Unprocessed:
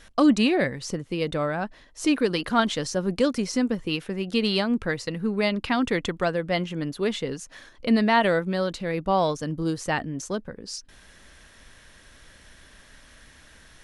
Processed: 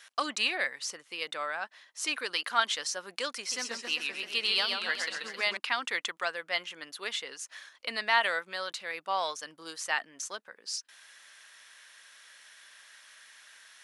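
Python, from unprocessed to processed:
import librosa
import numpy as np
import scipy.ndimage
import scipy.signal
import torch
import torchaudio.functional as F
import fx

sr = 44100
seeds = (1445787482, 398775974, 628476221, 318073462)

y = scipy.signal.sosfilt(scipy.signal.butter(2, 1200.0, 'highpass', fs=sr, output='sos'), x)
y = fx.echo_warbled(y, sr, ms=131, feedback_pct=58, rate_hz=2.8, cents=149, wet_db=-4, at=(3.38, 5.57))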